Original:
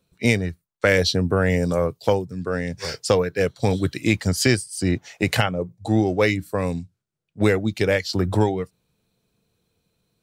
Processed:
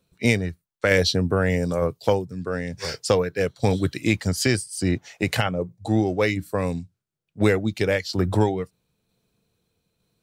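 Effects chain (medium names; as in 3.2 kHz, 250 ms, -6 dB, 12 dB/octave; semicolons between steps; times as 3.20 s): tremolo saw down 1.1 Hz, depth 30%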